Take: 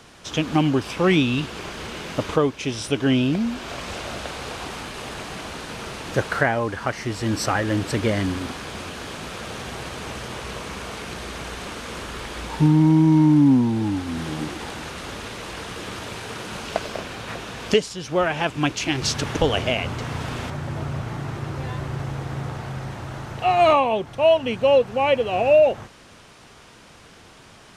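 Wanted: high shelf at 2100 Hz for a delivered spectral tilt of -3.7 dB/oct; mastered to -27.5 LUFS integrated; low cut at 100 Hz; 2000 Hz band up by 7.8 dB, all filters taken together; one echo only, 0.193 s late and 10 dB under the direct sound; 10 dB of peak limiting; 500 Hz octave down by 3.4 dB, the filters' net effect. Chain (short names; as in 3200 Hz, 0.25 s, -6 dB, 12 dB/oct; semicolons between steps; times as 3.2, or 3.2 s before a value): HPF 100 Hz; bell 500 Hz -5.5 dB; bell 2000 Hz +5.5 dB; high shelf 2100 Hz +8 dB; limiter -11 dBFS; echo 0.193 s -10 dB; gain -4 dB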